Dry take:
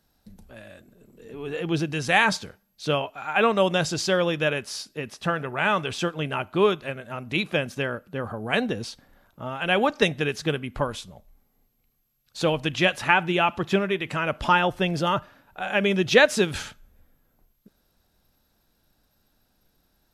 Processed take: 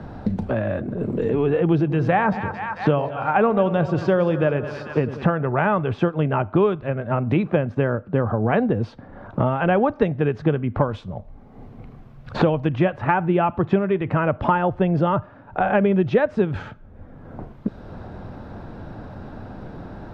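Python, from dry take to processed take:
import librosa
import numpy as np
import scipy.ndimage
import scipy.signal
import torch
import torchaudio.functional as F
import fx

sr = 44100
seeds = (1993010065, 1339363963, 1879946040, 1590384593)

y = fx.echo_split(x, sr, split_hz=840.0, low_ms=89, high_ms=222, feedback_pct=52, wet_db=-13.0, at=(1.64, 5.27))
y = scipy.signal.sosfilt(scipy.signal.butter(2, 1100.0, 'lowpass', fs=sr, output='sos'), y)
y = fx.peak_eq(y, sr, hz=100.0, db=9.0, octaves=0.8)
y = fx.band_squash(y, sr, depth_pct=100)
y = F.gain(torch.from_numpy(y), 4.5).numpy()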